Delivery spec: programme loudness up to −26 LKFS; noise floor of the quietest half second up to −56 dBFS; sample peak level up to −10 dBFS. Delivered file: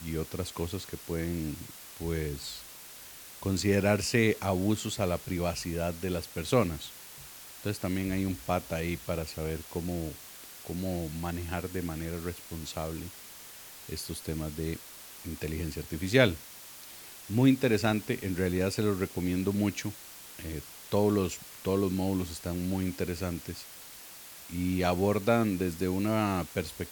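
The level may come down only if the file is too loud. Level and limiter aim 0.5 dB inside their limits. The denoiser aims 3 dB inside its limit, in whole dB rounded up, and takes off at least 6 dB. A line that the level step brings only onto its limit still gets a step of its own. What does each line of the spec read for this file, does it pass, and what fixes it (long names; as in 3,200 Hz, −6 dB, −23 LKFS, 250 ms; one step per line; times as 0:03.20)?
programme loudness −31.5 LKFS: in spec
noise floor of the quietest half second −48 dBFS: out of spec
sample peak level −7.0 dBFS: out of spec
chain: broadband denoise 11 dB, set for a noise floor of −48 dBFS
brickwall limiter −10.5 dBFS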